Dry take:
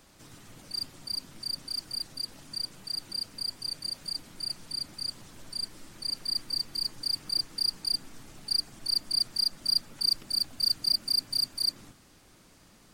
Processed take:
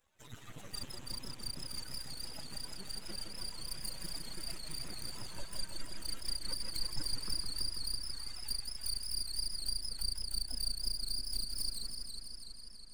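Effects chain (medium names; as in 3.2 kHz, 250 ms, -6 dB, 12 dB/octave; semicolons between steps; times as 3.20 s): expander on every frequency bin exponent 3; 7.49–9.19 s: high-pass 1 kHz 12 dB/octave; compression 16:1, threshold -47 dBFS, peak gain reduction 24 dB; half-wave rectifier; modulated delay 164 ms, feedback 80%, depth 154 cents, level -5.5 dB; trim +15.5 dB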